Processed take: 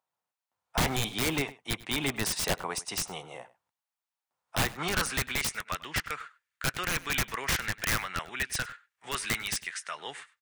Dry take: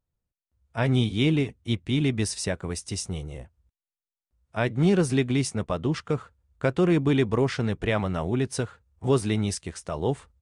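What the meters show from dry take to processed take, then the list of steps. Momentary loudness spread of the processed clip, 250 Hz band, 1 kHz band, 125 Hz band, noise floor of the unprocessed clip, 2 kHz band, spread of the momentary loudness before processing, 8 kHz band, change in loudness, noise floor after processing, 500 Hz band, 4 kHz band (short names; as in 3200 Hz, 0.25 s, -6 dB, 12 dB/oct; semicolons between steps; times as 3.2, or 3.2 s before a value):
10 LU, -13.5 dB, 0.0 dB, -12.5 dB, under -85 dBFS, +3.5 dB, 12 LU, +3.0 dB, -5.0 dB, under -85 dBFS, -12.0 dB, +2.5 dB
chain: HPF 94 Hz 24 dB/oct; high-pass sweep 850 Hz -> 1800 Hz, 4.42–5.53; wrapped overs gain 23.5 dB; tone controls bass +13 dB, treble -3 dB; outdoor echo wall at 17 m, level -19 dB; gain +3.5 dB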